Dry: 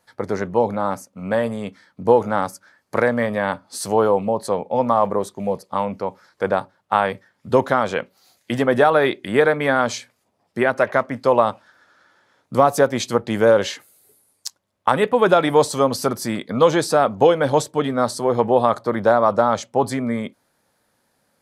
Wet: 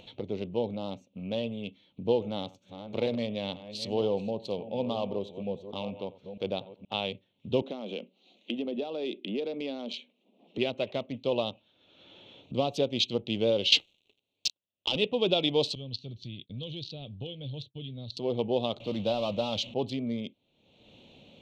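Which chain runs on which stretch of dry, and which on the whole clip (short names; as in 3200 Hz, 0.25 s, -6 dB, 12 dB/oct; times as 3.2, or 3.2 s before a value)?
2.12–6.94 reverse delay 0.473 s, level -12 dB + echo 89 ms -19 dB
7.62–10.58 steep high-pass 190 Hz 48 dB/oct + tilt -2 dB/oct + compressor 2.5:1, threshold -22 dBFS
13.72–14.96 low shelf 340 Hz -7.5 dB + compressor 5:1, threshold -27 dBFS + sample leveller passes 5
15.75–18.17 expander -32 dBFS + EQ curve 130 Hz 0 dB, 210 Hz -13 dB, 1300 Hz -25 dB, 4400 Hz -1 dB, 7900 Hz -21 dB
18.8–19.74 zero-crossing step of -29 dBFS + bell 400 Hz -10.5 dB 0.27 oct + doubler 19 ms -13 dB
whole clip: Wiener smoothing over 9 samples; EQ curve 360 Hz 0 dB, 660 Hz -5 dB, 1700 Hz -25 dB, 2700 Hz +13 dB, 3900 Hz +14 dB, 9500 Hz -17 dB; upward compressor, threshold -26 dBFS; gain -9 dB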